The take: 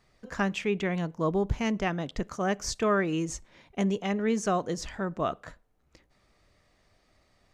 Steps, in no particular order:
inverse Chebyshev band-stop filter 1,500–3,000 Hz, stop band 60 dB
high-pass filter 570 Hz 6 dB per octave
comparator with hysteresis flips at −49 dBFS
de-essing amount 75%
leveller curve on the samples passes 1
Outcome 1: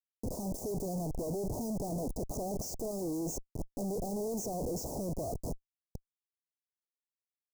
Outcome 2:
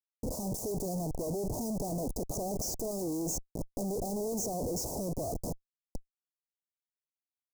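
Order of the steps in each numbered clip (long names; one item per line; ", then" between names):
high-pass filter, then comparator with hysteresis, then de-essing, then leveller curve on the samples, then inverse Chebyshev band-stop filter
high-pass filter, then leveller curve on the samples, then de-essing, then comparator with hysteresis, then inverse Chebyshev band-stop filter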